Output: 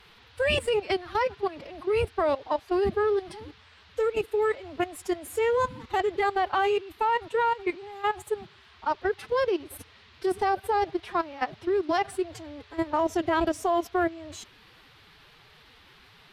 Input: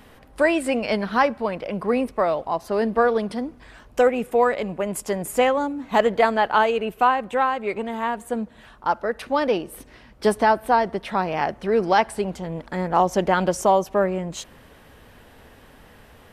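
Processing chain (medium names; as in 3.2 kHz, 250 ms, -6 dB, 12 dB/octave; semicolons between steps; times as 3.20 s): in parallel at 0 dB: peak limiter -15 dBFS, peak gain reduction 10 dB; on the sum: level held to a coarse grid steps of 18 dB; formant-preserving pitch shift +10 st; band noise 880–4200 Hz -52 dBFS; trim -5 dB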